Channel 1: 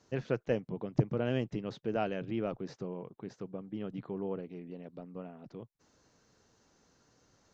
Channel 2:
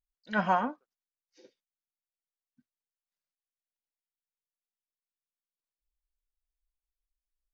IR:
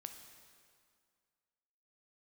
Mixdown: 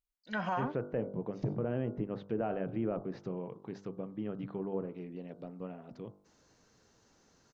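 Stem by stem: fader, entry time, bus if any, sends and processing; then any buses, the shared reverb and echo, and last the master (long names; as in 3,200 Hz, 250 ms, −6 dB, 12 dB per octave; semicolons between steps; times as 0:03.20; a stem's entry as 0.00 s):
+1.5 dB, 0.45 s, no send, hum removal 49.53 Hz, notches 31; treble cut that deepens with the level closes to 1,400 Hz, closed at −33 dBFS
−2.5 dB, 0.00 s, no send, no processing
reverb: not used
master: brickwall limiter −23.5 dBFS, peak gain reduction 10 dB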